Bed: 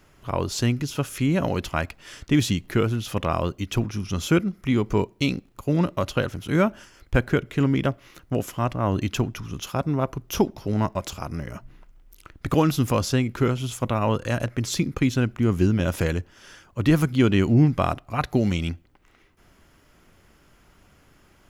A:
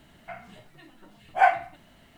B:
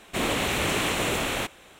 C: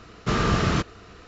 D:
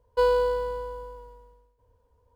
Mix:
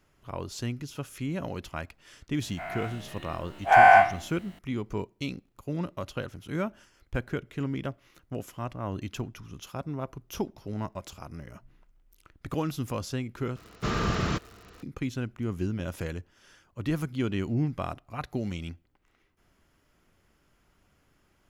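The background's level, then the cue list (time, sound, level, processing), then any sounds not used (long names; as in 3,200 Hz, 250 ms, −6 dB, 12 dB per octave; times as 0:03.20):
bed −10.5 dB
0:02.42: mix in A −2 dB + every bin's largest magnitude spread in time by 240 ms
0:13.56: overwrite with C −5.5 dB + surface crackle 140 per second −34 dBFS
not used: B, D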